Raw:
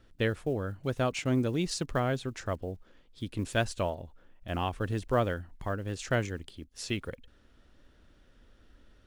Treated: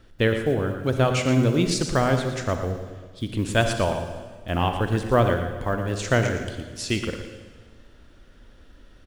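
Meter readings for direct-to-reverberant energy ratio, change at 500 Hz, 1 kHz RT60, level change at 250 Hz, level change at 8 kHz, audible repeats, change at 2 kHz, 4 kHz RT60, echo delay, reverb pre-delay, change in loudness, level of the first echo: 5.0 dB, +8.5 dB, 1.4 s, +8.5 dB, +8.5 dB, 1, +8.5 dB, 1.4 s, 0.116 s, 37 ms, +8.5 dB, -10.0 dB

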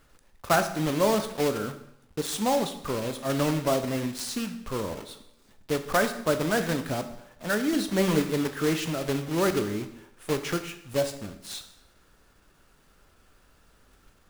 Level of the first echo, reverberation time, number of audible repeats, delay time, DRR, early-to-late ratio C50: none, 0.80 s, none, none, 8.0 dB, 11.0 dB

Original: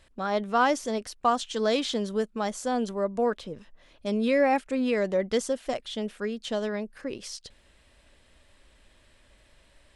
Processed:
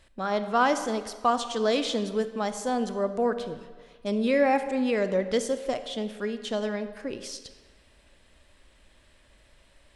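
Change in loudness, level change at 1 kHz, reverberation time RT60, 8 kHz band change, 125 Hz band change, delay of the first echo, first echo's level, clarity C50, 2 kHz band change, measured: +0.5 dB, +0.5 dB, 1.6 s, +0.5 dB, +0.5 dB, none, none, 11.0 dB, +0.5 dB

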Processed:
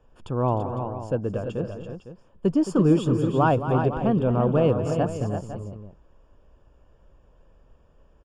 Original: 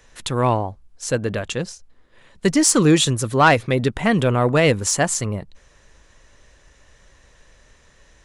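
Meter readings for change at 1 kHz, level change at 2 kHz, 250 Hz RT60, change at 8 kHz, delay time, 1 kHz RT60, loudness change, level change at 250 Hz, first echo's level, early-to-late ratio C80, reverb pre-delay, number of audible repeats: -6.0 dB, -15.5 dB, none, -26.5 dB, 0.218 s, none, -5.0 dB, -2.5 dB, -11.5 dB, none, none, 4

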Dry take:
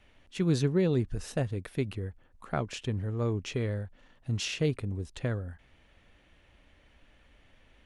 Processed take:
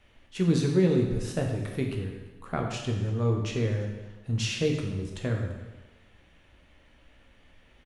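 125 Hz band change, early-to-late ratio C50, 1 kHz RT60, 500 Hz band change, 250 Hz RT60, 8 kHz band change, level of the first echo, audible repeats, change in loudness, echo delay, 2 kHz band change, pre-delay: +3.5 dB, 4.5 dB, 1.1 s, +3.0 dB, 1.1 s, +2.5 dB, -22.0 dB, 1, +3.0 dB, 0.34 s, +2.5 dB, 6 ms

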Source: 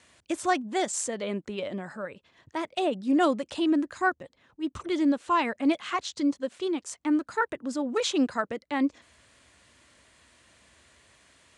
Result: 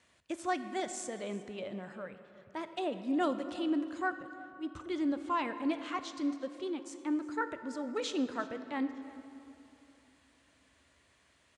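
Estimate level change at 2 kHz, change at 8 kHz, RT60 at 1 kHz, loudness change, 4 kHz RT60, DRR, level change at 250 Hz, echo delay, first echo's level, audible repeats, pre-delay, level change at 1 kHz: -8.0 dB, -11.0 dB, 2.9 s, -8.0 dB, 1.7 s, 9.5 dB, -7.5 dB, 0.358 s, -20.0 dB, 1, 15 ms, -7.5 dB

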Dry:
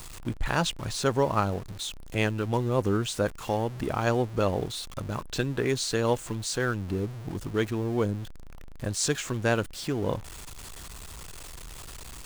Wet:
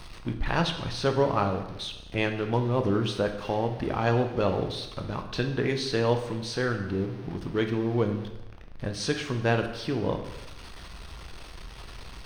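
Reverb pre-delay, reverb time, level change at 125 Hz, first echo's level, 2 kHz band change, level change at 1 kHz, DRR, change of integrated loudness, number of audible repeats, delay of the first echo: 5 ms, 1.0 s, +0.5 dB, none, 0.0 dB, +0.5 dB, 5.0 dB, +0.5 dB, none, none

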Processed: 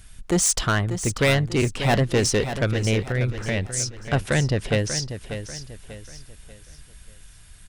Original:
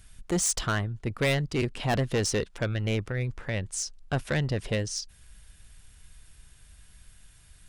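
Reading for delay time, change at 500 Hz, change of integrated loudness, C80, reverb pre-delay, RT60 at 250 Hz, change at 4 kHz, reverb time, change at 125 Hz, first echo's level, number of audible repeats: 0.59 s, +6.5 dB, +6.0 dB, none, none, none, +6.5 dB, none, +6.5 dB, -10.0 dB, 3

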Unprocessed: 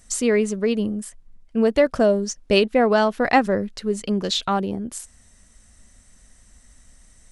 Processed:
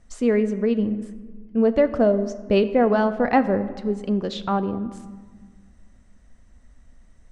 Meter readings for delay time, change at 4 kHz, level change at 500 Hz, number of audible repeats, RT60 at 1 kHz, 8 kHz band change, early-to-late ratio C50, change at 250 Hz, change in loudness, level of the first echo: none, -10.5 dB, -1.0 dB, none, 1.6 s, under -15 dB, 13.5 dB, +1.0 dB, -1.0 dB, none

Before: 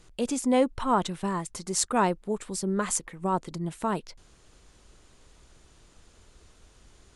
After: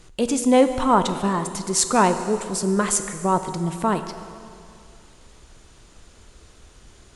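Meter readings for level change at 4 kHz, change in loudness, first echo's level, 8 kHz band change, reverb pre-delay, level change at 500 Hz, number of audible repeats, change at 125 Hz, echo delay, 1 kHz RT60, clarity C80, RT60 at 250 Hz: +7.0 dB, +7.0 dB, none, +7.0 dB, 7 ms, +7.5 dB, none, +6.5 dB, none, 2.4 s, 10.5 dB, 2.4 s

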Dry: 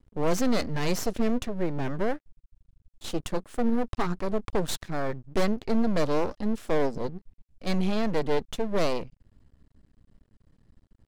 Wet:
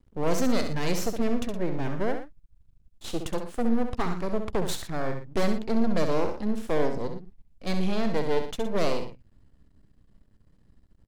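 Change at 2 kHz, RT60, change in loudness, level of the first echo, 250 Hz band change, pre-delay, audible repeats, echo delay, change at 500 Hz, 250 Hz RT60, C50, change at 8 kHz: 0.0 dB, none, 0.0 dB, -7.5 dB, 0.0 dB, none, 2, 66 ms, 0.0 dB, none, none, 0.0 dB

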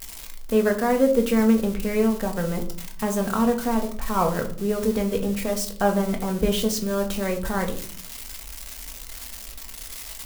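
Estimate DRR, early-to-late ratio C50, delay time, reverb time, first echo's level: 3.0 dB, 12.0 dB, none, 0.55 s, none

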